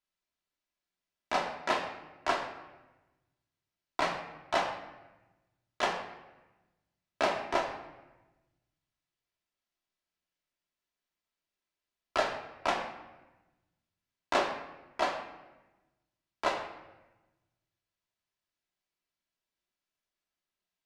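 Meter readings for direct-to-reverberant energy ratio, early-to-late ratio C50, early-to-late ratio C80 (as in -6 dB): 0.0 dB, 7.0 dB, 9.0 dB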